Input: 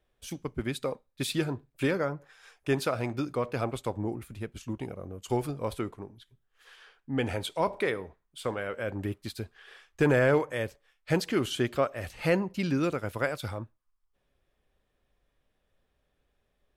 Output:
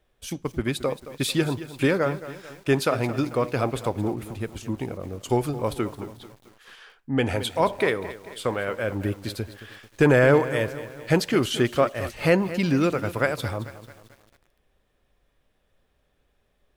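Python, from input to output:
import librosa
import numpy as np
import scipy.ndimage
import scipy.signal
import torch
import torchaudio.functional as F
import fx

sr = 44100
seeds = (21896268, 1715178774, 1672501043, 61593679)

y = fx.echo_crushed(x, sr, ms=221, feedback_pct=55, bits=8, wet_db=-14)
y = y * librosa.db_to_amplitude(6.0)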